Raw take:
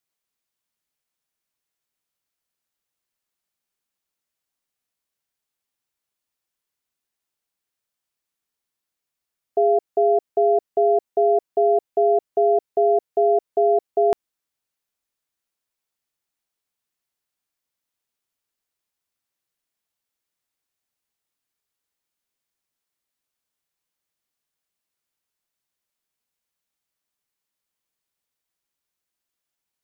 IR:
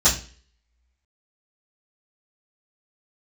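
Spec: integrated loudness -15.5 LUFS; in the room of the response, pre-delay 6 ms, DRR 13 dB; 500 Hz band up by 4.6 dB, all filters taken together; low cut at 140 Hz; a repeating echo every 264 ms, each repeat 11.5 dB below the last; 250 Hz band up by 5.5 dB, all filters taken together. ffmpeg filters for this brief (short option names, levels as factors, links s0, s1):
-filter_complex "[0:a]highpass=140,equalizer=f=250:t=o:g=6.5,equalizer=f=500:t=o:g=4.5,aecho=1:1:264|528|792:0.266|0.0718|0.0194,asplit=2[s0][s1];[1:a]atrim=start_sample=2205,adelay=6[s2];[s1][s2]afir=irnorm=-1:irlink=0,volume=0.0316[s3];[s0][s3]amix=inputs=2:normalize=0,volume=1.06"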